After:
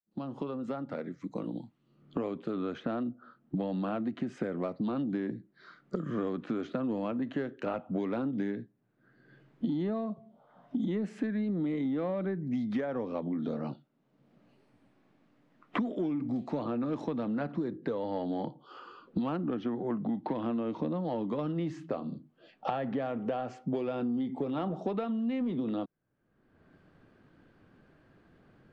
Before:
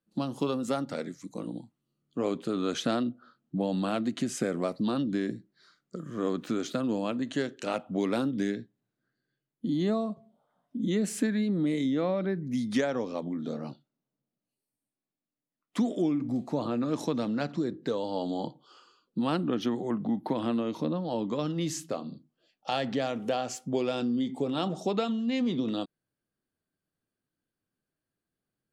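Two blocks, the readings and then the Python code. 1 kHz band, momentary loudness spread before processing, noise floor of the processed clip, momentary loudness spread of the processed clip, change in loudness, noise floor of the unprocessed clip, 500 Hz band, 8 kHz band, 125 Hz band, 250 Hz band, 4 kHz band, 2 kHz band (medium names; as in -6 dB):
-3.0 dB, 10 LU, -72 dBFS, 7 LU, -3.5 dB, under -85 dBFS, -3.5 dB, under -20 dB, -2.5 dB, -3.0 dB, -13.0 dB, -5.5 dB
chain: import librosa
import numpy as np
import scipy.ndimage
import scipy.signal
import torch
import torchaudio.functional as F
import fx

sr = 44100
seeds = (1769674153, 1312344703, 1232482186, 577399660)

p1 = fx.fade_in_head(x, sr, length_s=5.36)
p2 = scipy.signal.sosfilt(scipy.signal.butter(2, 2000.0, 'lowpass', fs=sr, output='sos'), p1)
p3 = 10.0 ** (-27.0 / 20.0) * np.tanh(p2 / 10.0 ** (-27.0 / 20.0))
p4 = p2 + (p3 * librosa.db_to_amplitude(-7.0))
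p5 = fx.band_squash(p4, sr, depth_pct=100)
y = p5 * librosa.db_to_amplitude(-5.5)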